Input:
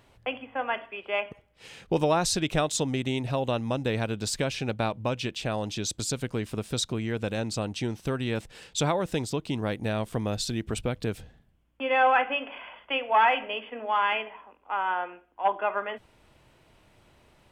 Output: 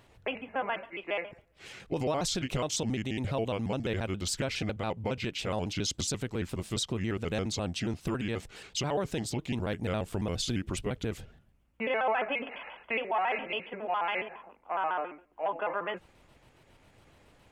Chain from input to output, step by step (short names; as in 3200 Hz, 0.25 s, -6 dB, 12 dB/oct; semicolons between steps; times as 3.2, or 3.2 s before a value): trilling pitch shifter -3 st, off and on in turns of 69 ms; limiter -21.5 dBFS, peak gain reduction 10.5 dB